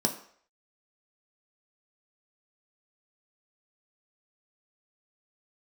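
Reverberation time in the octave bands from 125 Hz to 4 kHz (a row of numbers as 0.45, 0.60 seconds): 0.35, 0.45, 0.60, 0.60, 0.55, 0.55 seconds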